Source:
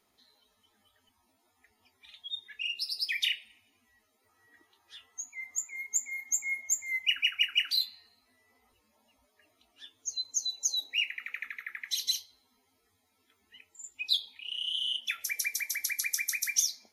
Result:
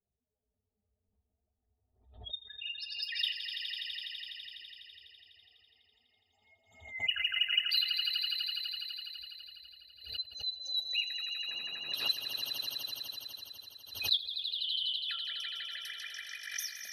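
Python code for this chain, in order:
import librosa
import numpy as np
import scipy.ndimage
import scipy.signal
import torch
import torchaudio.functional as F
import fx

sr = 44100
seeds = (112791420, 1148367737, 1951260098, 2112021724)

p1 = fx.bin_expand(x, sr, power=1.5)
p2 = fx.peak_eq(p1, sr, hz=69.0, db=11.0, octaves=0.33)
p3 = fx.fixed_phaser(p2, sr, hz=1500.0, stages=8)
p4 = fx.dmg_noise_band(p3, sr, seeds[0], low_hz=120.0, high_hz=1400.0, level_db=-59.0, at=(11.47, 12.07), fade=0.02)
p5 = fx.env_lowpass(p4, sr, base_hz=340.0, full_db=-34.5)
p6 = fx.brickwall_lowpass(p5, sr, high_hz=7900.0, at=(15.99, 16.42), fade=0.02)
p7 = p6 + fx.echo_swell(p6, sr, ms=83, loudest=5, wet_db=-9.0, dry=0)
y = fx.pre_swell(p7, sr, db_per_s=100.0)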